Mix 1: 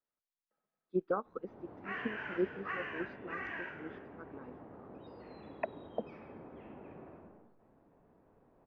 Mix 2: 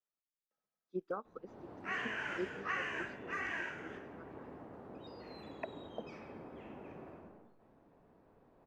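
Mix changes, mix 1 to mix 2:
speech -7.5 dB; master: remove distance through air 290 m

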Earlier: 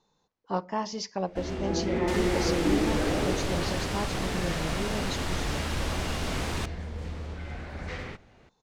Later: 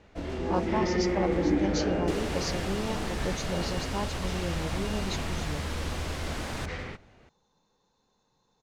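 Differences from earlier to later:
first sound: entry -1.20 s; second sound -3.5 dB

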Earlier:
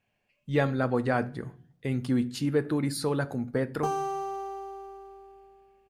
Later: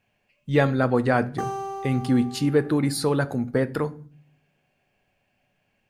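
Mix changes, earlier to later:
speech +5.5 dB; background: entry -2.45 s

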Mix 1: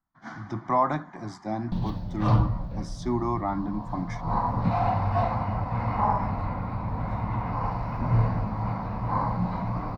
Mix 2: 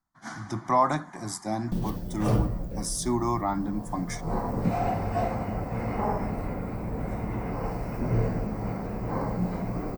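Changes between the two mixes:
background: add fifteen-band graphic EQ 100 Hz -7 dB, 400 Hz +11 dB, 1 kHz -12 dB, 4 kHz -11 dB, 16 kHz -11 dB; master: remove distance through air 210 m

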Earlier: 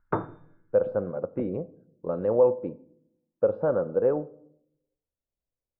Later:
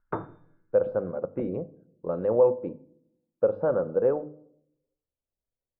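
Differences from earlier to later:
background -4.0 dB; master: add hum notches 50/100/150/200/250/300 Hz

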